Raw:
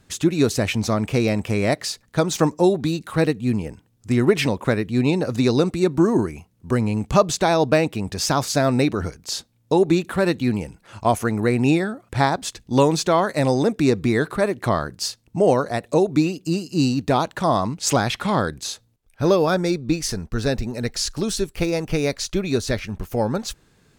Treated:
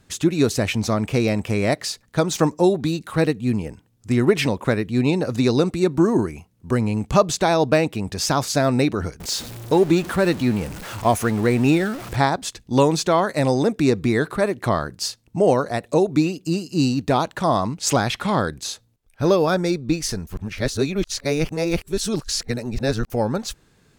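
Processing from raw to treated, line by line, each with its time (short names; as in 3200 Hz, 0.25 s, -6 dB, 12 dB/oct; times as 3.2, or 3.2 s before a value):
9.2–12.16 zero-crossing step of -29.5 dBFS
20.27–23.1 reverse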